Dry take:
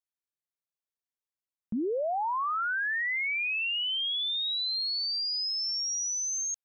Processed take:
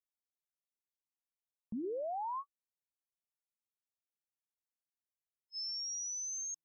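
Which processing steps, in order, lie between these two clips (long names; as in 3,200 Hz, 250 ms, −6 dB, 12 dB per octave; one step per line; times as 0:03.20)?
linear-phase brick-wall band-stop 1,100–5,200 Hz
hum removal 160.6 Hz, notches 2
level −8.5 dB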